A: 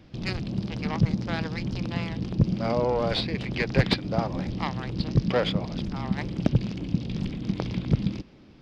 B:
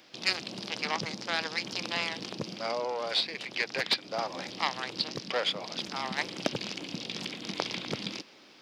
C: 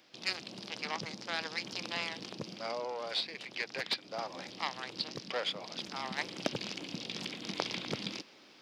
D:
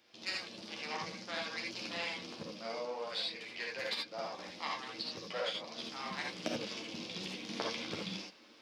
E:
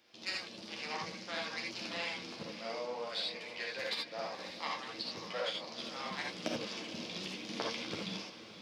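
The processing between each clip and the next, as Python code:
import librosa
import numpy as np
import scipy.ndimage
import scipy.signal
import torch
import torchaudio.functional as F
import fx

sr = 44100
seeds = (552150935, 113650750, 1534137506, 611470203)

y1 = scipy.signal.sosfilt(scipy.signal.bessel(2, 660.0, 'highpass', norm='mag', fs=sr, output='sos'), x)
y1 = fx.rider(y1, sr, range_db=4, speed_s=0.5)
y1 = fx.high_shelf(y1, sr, hz=3900.0, db=10.5)
y2 = fx.rider(y1, sr, range_db=10, speed_s=2.0)
y2 = F.gain(torch.from_numpy(y2), -5.5).numpy()
y3 = fx.chorus_voices(y2, sr, voices=4, hz=0.54, base_ms=11, depth_ms=2.3, mix_pct=40)
y3 = fx.rev_gated(y3, sr, seeds[0], gate_ms=100, shape='rising', drr_db=-1.0)
y3 = F.gain(torch.from_numpy(y3), -2.5).numpy()
y4 = fx.echo_diffused(y3, sr, ms=554, feedback_pct=41, wet_db=-12)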